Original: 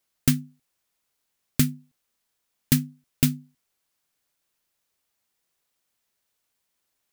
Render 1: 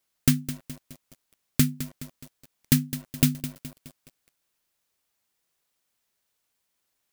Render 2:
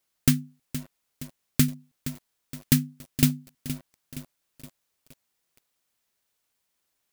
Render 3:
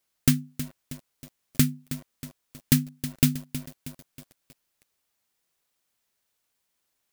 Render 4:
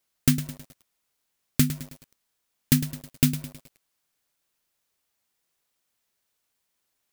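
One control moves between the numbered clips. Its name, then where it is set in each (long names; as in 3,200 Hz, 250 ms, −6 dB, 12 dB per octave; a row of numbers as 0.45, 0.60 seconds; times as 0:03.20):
feedback echo at a low word length, delay time: 210, 469, 318, 106 milliseconds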